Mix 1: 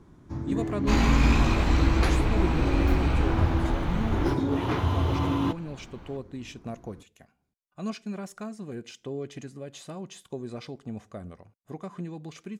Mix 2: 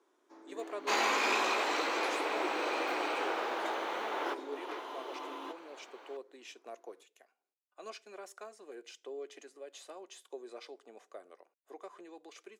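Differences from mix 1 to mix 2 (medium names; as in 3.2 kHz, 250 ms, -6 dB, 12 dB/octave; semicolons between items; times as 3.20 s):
speech -6.0 dB; first sound -10.5 dB; master: add steep high-pass 360 Hz 36 dB/octave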